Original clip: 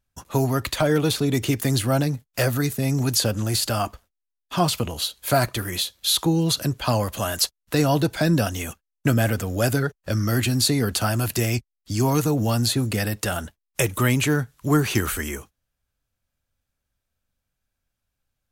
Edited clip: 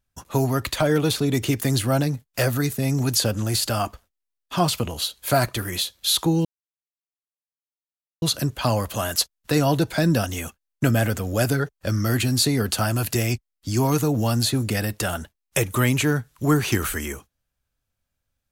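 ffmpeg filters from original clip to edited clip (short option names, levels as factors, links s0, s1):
-filter_complex "[0:a]asplit=2[s0][s1];[s0]atrim=end=6.45,asetpts=PTS-STARTPTS,afade=t=out:st=6.446:d=0.004:c=hsin,apad=pad_dur=1.77[s2];[s1]atrim=start=6.45,asetpts=PTS-STARTPTS,afade=t=in:d=0.004:c=hsin[s3];[s2][s3]concat=n=2:v=0:a=1"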